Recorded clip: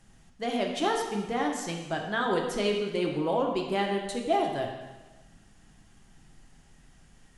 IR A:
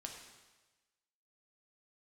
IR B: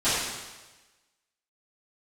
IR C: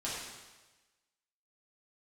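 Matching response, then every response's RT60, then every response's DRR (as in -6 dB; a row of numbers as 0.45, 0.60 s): A; 1.2, 1.2, 1.2 s; 1.0, -18.0, -8.5 dB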